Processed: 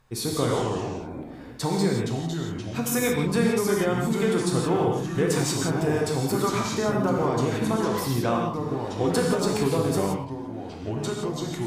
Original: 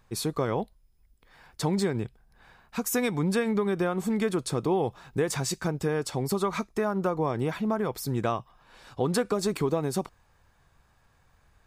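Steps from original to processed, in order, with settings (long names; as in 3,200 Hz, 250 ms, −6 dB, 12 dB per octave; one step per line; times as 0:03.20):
harmonic generator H 2 −33 dB, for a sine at −14 dBFS
delay with pitch and tempo change per echo 165 ms, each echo −3 semitones, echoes 3, each echo −6 dB
reverb whose tail is shaped and stops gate 200 ms flat, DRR −0.5 dB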